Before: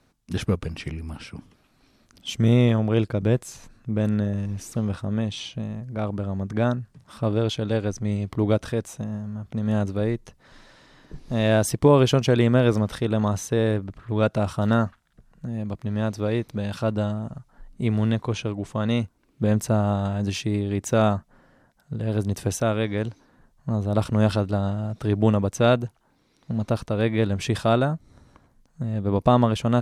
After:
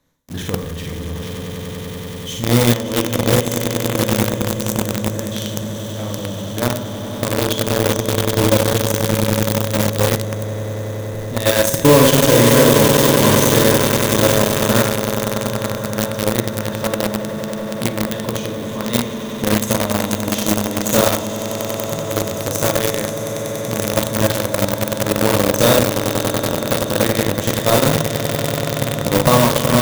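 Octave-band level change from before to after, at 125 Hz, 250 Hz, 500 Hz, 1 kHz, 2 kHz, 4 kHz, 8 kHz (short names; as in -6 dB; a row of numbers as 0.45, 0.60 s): +3.5, +5.0, +8.0, +8.5, +12.0, +13.5, +17.0 dB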